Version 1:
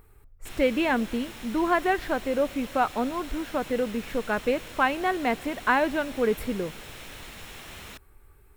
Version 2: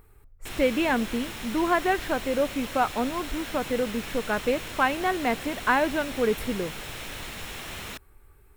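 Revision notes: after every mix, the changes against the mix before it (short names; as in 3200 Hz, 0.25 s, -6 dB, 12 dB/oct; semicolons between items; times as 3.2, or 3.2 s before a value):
background +5.5 dB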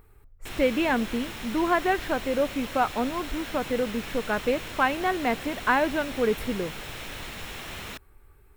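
master: add bell 9800 Hz -3.5 dB 1.4 oct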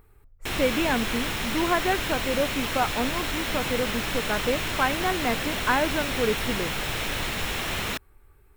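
speech: send -9.0 dB; background +9.0 dB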